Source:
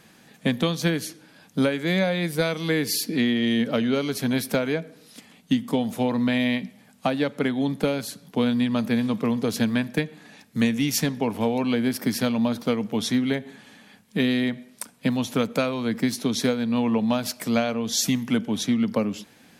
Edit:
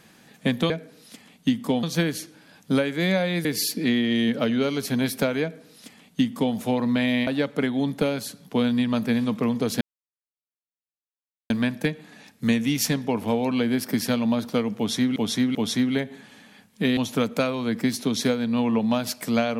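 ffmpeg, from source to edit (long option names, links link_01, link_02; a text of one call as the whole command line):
ffmpeg -i in.wav -filter_complex "[0:a]asplit=9[link_01][link_02][link_03][link_04][link_05][link_06][link_07][link_08][link_09];[link_01]atrim=end=0.702[link_10];[link_02]atrim=start=4.738:end=5.872[link_11];[link_03]atrim=start=0.698:end=2.322[link_12];[link_04]atrim=start=2.768:end=6.592[link_13];[link_05]atrim=start=7.088:end=9.63,asetpts=PTS-STARTPTS,afade=type=out:start_time=2.538:duration=0.004:curve=hsin,apad=pad_dur=1.69[link_14];[link_06]atrim=start=9.63:end=13.292,asetpts=PTS-STARTPTS,afade=type=in:duration=0.004:curve=hsin[link_15];[link_07]atrim=start=12.898:end=13.292[link_16];[link_08]atrim=start=12.898:end=14.322[link_17];[link_09]atrim=start=15.158[link_18];[link_10][link_11]acrossfade=duration=0.004:curve1=hsin:curve2=hsin[link_19];[link_19][link_12]acrossfade=duration=0.004:curve1=hsin:curve2=hsin[link_20];[link_20][link_13]acrossfade=duration=0.004:curve1=hsin:curve2=hsin[link_21];[link_14][link_15]concat=n=2:v=0:a=1[link_22];[link_21][link_22]acrossfade=duration=0.004:curve1=hsin:curve2=hsin[link_23];[link_23][link_16]acrossfade=duration=0.004:curve1=hsin:curve2=hsin[link_24];[link_24][link_17]acrossfade=duration=0.004:curve1=hsin:curve2=hsin[link_25];[link_25][link_18]acrossfade=duration=0.004:curve1=hsin:curve2=hsin" out.wav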